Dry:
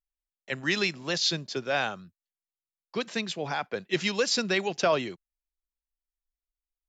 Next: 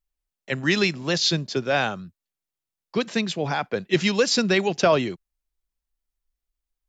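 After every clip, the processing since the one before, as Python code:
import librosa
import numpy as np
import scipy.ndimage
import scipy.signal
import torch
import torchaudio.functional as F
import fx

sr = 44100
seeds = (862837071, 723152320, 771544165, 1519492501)

y = fx.low_shelf(x, sr, hz=340.0, db=7.0)
y = F.gain(torch.from_numpy(y), 4.0).numpy()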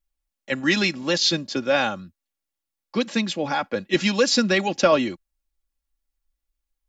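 y = x + 0.6 * np.pad(x, (int(3.6 * sr / 1000.0), 0))[:len(x)]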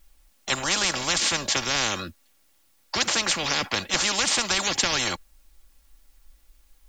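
y = fx.spectral_comp(x, sr, ratio=10.0)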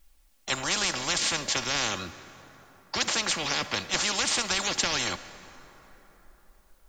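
y = fx.rev_plate(x, sr, seeds[0], rt60_s=4.1, hf_ratio=0.5, predelay_ms=0, drr_db=13.0)
y = F.gain(torch.from_numpy(y), -3.5).numpy()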